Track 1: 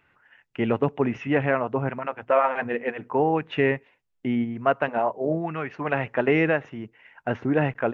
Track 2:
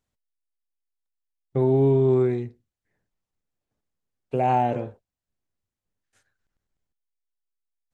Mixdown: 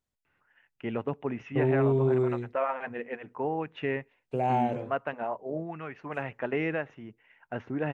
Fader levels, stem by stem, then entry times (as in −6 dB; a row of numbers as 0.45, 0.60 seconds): −9.0, −5.5 decibels; 0.25, 0.00 seconds